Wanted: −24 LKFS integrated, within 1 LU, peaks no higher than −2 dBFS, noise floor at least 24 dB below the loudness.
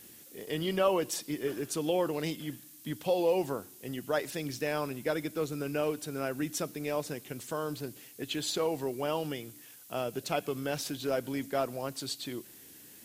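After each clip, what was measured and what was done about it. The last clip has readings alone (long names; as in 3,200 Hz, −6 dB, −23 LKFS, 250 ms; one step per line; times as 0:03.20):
background noise floor −53 dBFS; target noise floor −58 dBFS; integrated loudness −33.5 LKFS; sample peak −14.5 dBFS; target loudness −24.0 LKFS
→ noise reduction from a noise print 6 dB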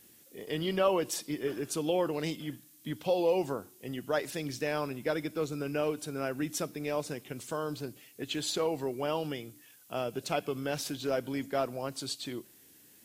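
background noise floor −59 dBFS; integrated loudness −33.5 LKFS; sample peak −14.5 dBFS; target loudness −24.0 LKFS
→ level +9.5 dB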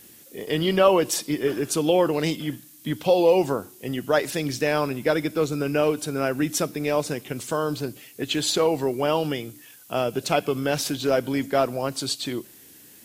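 integrated loudness −24.0 LKFS; sample peak −5.0 dBFS; background noise floor −49 dBFS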